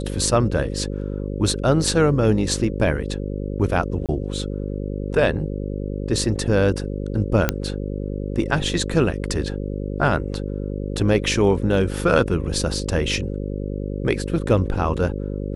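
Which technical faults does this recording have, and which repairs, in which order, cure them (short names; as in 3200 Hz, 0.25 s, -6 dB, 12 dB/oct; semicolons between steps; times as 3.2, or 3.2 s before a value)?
buzz 50 Hz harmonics 11 -27 dBFS
4.06–4.09 gap 27 ms
7.49 pop -3 dBFS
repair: de-click; de-hum 50 Hz, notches 11; interpolate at 4.06, 27 ms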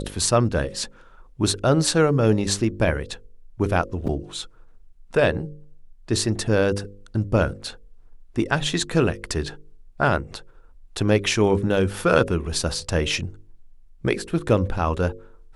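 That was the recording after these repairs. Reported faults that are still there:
none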